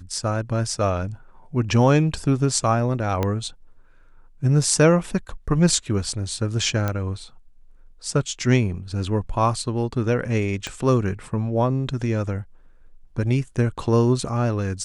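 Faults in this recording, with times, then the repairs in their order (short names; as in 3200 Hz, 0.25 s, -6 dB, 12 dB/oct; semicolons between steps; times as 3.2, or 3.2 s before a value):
3.23 pop -10 dBFS
6.88 pop -11 dBFS
10.67 pop -14 dBFS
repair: de-click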